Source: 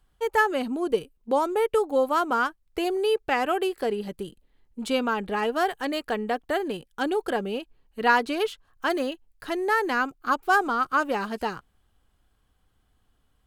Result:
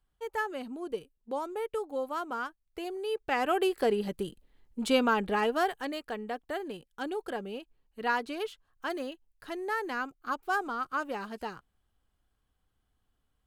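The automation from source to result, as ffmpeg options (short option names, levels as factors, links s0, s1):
-af "afade=t=in:st=3.05:d=0.73:silence=0.281838,afade=t=out:st=5.19:d=0.82:silence=0.354813"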